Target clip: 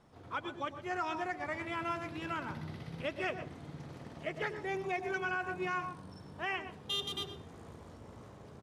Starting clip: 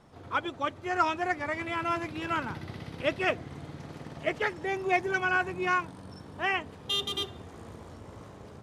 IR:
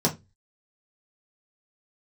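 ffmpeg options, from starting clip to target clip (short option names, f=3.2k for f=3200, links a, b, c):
-filter_complex "[0:a]asplit=2[a][b];[b]adelay=122.4,volume=-15dB,highshelf=f=4k:g=-2.76[c];[a][c]amix=inputs=2:normalize=0,asplit=2[d][e];[1:a]atrim=start_sample=2205,adelay=99[f];[e][f]afir=irnorm=-1:irlink=0,volume=-25.5dB[g];[d][g]amix=inputs=2:normalize=0,alimiter=limit=-19.5dB:level=0:latency=1:release=157,volume=-6dB"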